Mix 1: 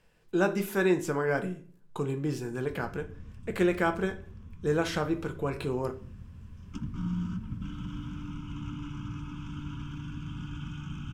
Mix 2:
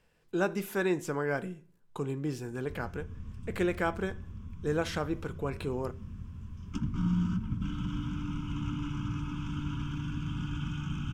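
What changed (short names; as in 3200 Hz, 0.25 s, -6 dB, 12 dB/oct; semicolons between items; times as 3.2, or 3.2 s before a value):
speech: send -11.0 dB; background +3.5 dB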